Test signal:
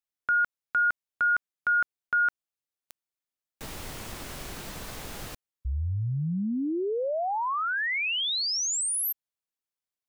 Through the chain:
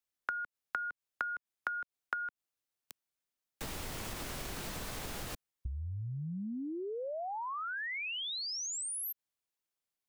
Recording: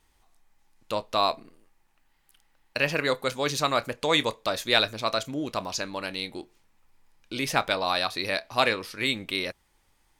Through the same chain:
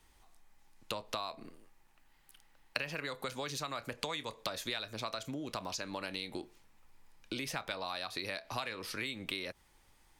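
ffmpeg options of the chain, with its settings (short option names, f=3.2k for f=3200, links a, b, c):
-filter_complex "[0:a]acrossover=split=220|710|3300[a][b][c][d];[b]alimiter=level_in=4.5dB:limit=-24dB:level=0:latency=1,volume=-4.5dB[e];[a][e][c][d]amix=inputs=4:normalize=0,acompressor=threshold=-39dB:ratio=8:attack=19:release=213:knee=1:detection=peak,volume=1dB"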